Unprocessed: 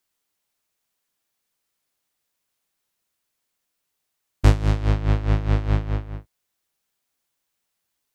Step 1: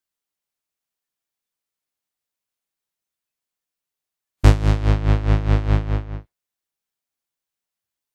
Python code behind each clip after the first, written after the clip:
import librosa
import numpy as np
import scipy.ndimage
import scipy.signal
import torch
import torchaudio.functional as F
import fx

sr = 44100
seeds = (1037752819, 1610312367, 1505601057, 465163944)

y = fx.noise_reduce_blind(x, sr, reduce_db=12)
y = y * 10.0 ** (3.0 / 20.0)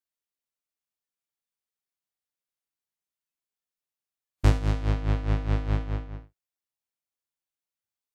y = x + 10.0 ** (-12.5 / 20.0) * np.pad(x, (int(73 * sr / 1000.0), 0))[:len(x)]
y = y * 10.0 ** (-8.0 / 20.0)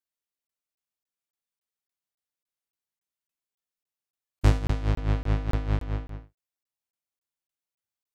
y = fx.buffer_crackle(x, sr, first_s=0.47, period_s=0.28, block=1024, kind='zero')